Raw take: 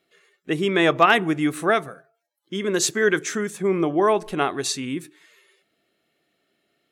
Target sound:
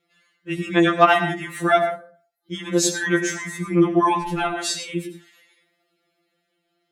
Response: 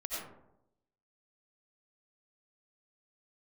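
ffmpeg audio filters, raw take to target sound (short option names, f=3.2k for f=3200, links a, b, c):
-filter_complex "[0:a]dynaudnorm=f=230:g=11:m=3.5dB,asplit=2[a][b];[1:a]atrim=start_sample=2205,afade=t=out:st=0.24:d=0.01,atrim=end_sample=11025,highshelf=f=11k:g=-6[c];[b][c]afir=irnorm=-1:irlink=0,volume=-5dB[d];[a][d]amix=inputs=2:normalize=0,afftfilt=real='re*2.83*eq(mod(b,8),0)':imag='im*2.83*eq(mod(b,8),0)':win_size=2048:overlap=0.75,volume=-2.5dB"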